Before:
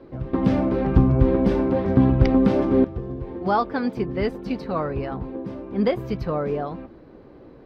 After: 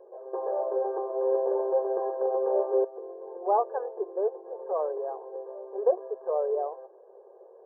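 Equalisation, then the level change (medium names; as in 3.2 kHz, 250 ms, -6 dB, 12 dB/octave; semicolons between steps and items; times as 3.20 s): brick-wall FIR band-pass 360–1700 Hz; static phaser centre 580 Hz, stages 4; 0.0 dB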